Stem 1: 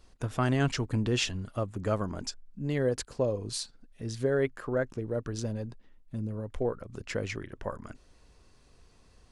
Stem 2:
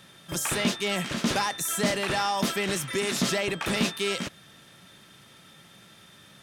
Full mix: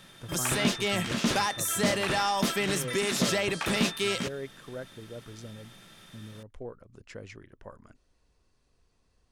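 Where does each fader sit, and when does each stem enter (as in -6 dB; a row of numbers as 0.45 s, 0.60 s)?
-10.5 dB, -0.5 dB; 0.00 s, 0.00 s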